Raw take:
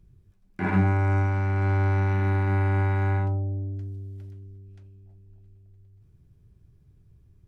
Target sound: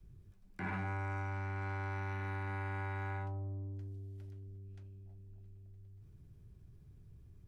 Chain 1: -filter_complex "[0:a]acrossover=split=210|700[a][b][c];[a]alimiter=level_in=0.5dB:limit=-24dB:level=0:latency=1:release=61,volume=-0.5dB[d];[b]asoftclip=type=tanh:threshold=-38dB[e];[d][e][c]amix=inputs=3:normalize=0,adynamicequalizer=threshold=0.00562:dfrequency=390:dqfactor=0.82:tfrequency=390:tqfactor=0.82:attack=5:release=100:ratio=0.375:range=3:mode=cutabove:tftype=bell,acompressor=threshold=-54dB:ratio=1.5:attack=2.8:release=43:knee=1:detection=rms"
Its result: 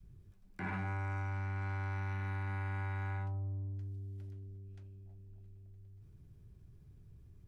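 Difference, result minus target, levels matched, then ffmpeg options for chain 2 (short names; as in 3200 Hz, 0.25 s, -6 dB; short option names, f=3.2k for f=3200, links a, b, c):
500 Hz band -5.0 dB
-filter_complex "[0:a]acrossover=split=210|700[a][b][c];[a]alimiter=level_in=0.5dB:limit=-24dB:level=0:latency=1:release=61,volume=-0.5dB[d];[b]asoftclip=type=tanh:threshold=-38dB[e];[d][e][c]amix=inputs=3:normalize=0,adynamicequalizer=threshold=0.00562:dfrequency=150:dqfactor=0.82:tfrequency=150:tqfactor=0.82:attack=5:release=100:ratio=0.375:range=3:mode=cutabove:tftype=bell,acompressor=threshold=-54dB:ratio=1.5:attack=2.8:release=43:knee=1:detection=rms"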